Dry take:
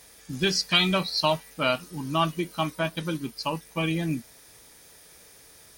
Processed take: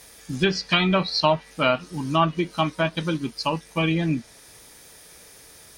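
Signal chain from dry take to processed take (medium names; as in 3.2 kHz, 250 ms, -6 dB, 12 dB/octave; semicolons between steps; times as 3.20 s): low-pass that closes with the level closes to 2.2 kHz, closed at -19 dBFS; trim +4.5 dB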